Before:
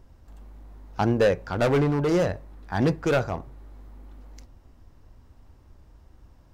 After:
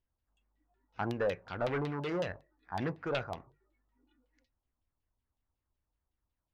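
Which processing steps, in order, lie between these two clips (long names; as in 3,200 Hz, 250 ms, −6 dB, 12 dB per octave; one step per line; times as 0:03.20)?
noise reduction from a noise print of the clip's start 20 dB
auto-filter low-pass saw down 5.4 Hz 760–3,700 Hz
first-order pre-emphasis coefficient 0.8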